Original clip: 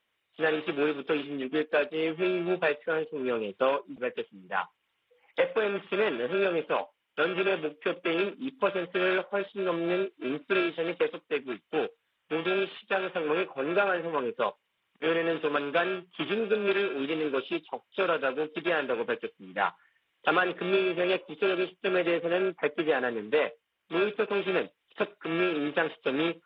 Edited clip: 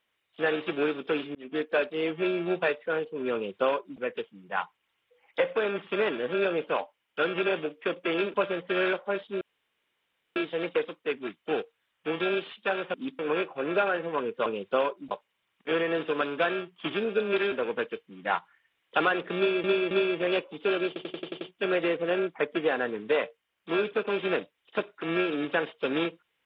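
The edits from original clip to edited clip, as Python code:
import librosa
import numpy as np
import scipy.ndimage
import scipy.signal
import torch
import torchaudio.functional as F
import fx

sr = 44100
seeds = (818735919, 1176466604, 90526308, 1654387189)

y = fx.edit(x, sr, fx.fade_in_span(start_s=1.35, length_s=0.39, curve='qsin'),
    fx.duplicate(start_s=3.34, length_s=0.65, to_s=14.46),
    fx.move(start_s=8.34, length_s=0.25, to_s=13.19),
    fx.room_tone_fill(start_s=9.66, length_s=0.95),
    fx.cut(start_s=16.87, length_s=1.96),
    fx.repeat(start_s=20.68, length_s=0.27, count=3),
    fx.stutter(start_s=21.64, slice_s=0.09, count=7), tone=tone)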